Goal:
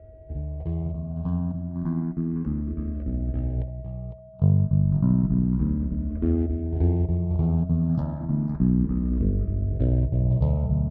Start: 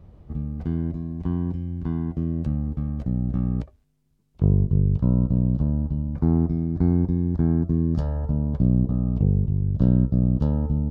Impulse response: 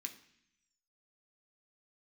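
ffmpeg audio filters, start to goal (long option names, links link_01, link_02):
-filter_complex "[0:a]aeval=exprs='val(0)+0.00562*sin(2*PI*640*n/s)':channel_layout=same,asplit=2[link_01][link_02];[link_02]adelay=490,lowpass=frequency=980:poles=1,volume=-20dB,asplit=2[link_03][link_04];[link_04]adelay=490,lowpass=frequency=980:poles=1,volume=0.26[link_05];[link_03][link_05]amix=inputs=2:normalize=0[link_06];[link_01][link_06]amix=inputs=2:normalize=0,adynamicsmooth=sensitivity=4:basefreq=1000,asplit=2[link_07][link_08];[link_08]aecho=0:1:505:0.355[link_09];[link_07][link_09]amix=inputs=2:normalize=0,asplit=2[link_10][link_11];[link_11]afreqshift=0.31[link_12];[link_10][link_12]amix=inputs=2:normalize=1,volume=1dB"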